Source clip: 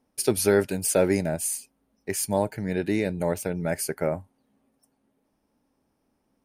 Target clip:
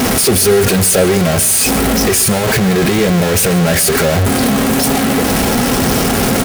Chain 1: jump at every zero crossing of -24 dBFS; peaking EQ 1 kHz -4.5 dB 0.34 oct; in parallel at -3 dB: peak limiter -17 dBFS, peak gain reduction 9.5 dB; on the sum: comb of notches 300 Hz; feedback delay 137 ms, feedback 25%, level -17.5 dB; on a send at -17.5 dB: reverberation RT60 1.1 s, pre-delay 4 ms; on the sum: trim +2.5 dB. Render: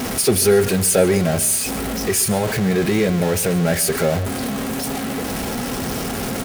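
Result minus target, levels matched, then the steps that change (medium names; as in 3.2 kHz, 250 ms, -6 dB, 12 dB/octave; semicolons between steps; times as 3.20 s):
jump at every zero crossing: distortion -7 dB
change: jump at every zero crossing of -12.5 dBFS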